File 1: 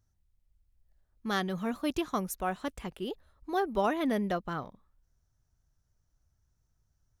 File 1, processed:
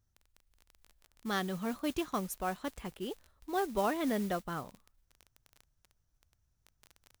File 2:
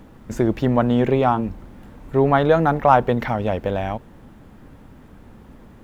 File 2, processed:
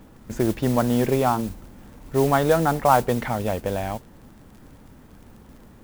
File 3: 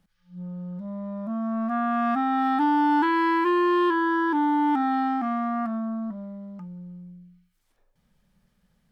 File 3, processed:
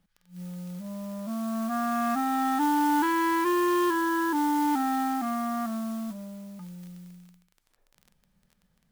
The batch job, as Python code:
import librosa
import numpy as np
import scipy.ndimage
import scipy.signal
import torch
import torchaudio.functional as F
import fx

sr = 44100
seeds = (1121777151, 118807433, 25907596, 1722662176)

y = fx.mod_noise(x, sr, seeds[0], snr_db=18)
y = fx.dmg_crackle(y, sr, seeds[1], per_s=20.0, level_db=-37.0)
y = y * 10.0 ** (-3.0 / 20.0)